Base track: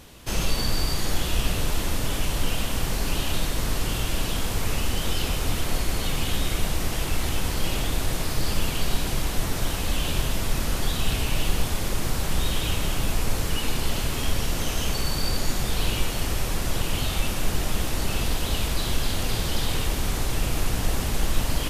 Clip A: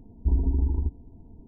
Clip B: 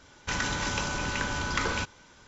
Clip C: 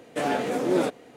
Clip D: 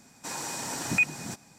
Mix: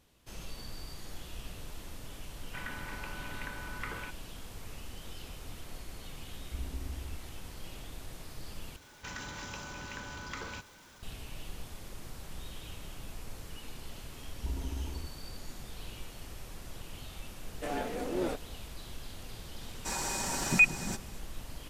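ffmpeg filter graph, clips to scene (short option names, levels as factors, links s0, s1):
-filter_complex "[2:a]asplit=2[s0][s1];[1:a]asplit=2[s2][s3];[0:a]volume=0.106[s4];[s0]lowpass=f=2200:t=q:w=1.6[s5];[s1]aeval=exprs='val(0)+0.5*0.0119*sgn(val(0))':c=same[s6];[s3]tiltshelf=f=850:g=-10[s7];[4:a]aecho=1:1:5.2:0.39[s8];[s4]asplit=2[s9][s10];[s9]atrim=end=8.764[s11];[s6]atrim=end=2.27,asetpts=PTS-STARTPTS,volume=0.211[s12];[s10]atrim=start=11.026[s13];[s5]atrim=end=2.27,asetpts=PTS-STARTPTS,volume=0.2,afade=t=in:d=0.004:c=hsin,afade=t=out:st=2.266:d=0.004:c=hsin,adelay=2260[s14];[s2]atrim=end=1.47,asetpts=PTS-STARTPTS,volume=0.141,afade=t=in:d=0.004:c=hsin,afade=t=out:st=1.466:d=0.004:c=hsin,adelay=6270[s15];[s7]atrim=end=1.47,asetpts=PTS-STARTPTS,volume=0.631,afade=t=in:d=0.004:c=hsin,afade=t=out:st=1.466:d=0.004:c=hsin,adelay=14180[s16];[3:a]atrim=end=1.16,asetpts=PTS-STARTPTS,volume=0.316,afade=t=in:d=0.004:c=hsin,afade=t=out:st=1.156:d=0.004:c=hsin,adelay=17460[s17];[s8]atrim=end=1.58,asetpts=PTS-STARTPTS,volume=0.944,afade=t=in:d=0.004:c=hsin,afade=t=out:st=1.576:d=0.004:c=hsin,adelay=19610[s18];[s11][s12]acrossfade=d=0.004:c1=hsin:c2=hsin[s19];[s19][s13]acrossfade=d=0.004:c1=hsin:c2=hsin[s20];[s20][s14][s15][s16][s17][s18]amix=inputs=6:normalize=0"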